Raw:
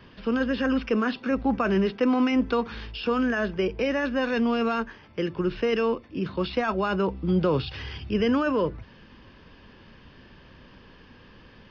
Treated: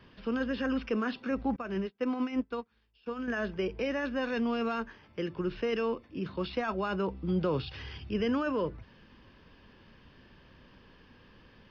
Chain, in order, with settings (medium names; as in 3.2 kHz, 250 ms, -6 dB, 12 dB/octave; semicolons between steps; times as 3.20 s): 1.56–3.28 s: upward expansion 2.5:1, over -39 dBFS; trim -6.5 dB